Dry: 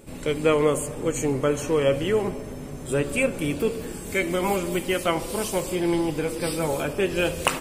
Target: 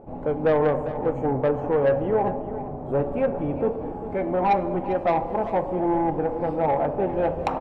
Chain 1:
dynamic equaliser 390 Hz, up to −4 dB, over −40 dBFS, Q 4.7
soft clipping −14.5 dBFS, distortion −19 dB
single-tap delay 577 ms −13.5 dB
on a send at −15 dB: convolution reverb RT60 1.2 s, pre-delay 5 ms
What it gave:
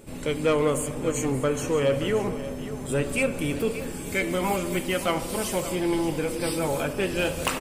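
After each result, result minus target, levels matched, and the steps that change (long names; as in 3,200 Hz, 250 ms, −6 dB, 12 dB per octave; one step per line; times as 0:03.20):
echo 180 ms late; 1,000 Hz band −5.5 dB
change: single-tap delay 397 ms −13.5 dB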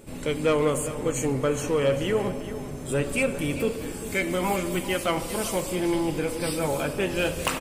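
1,000 Hz band −5.5 dB
add after dynamic equaliser: low-pass with resonance 800 Hz, resonance Q 4.5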